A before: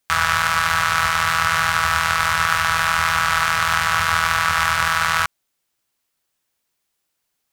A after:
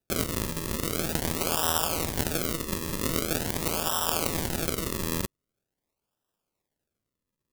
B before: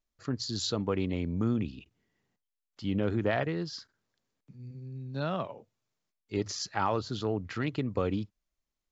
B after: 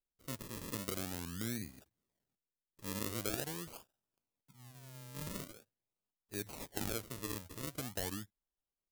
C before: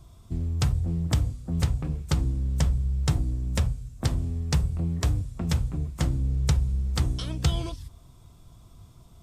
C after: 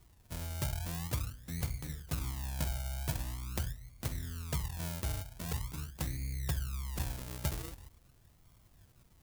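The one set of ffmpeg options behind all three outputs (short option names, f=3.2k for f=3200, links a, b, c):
-af "acrusher=samples=40:mix=1:aa=0.000001:lfo=1:lforange=40:lforate=0.44,crystalizer=i=3:c=0,volume=-12.5dB"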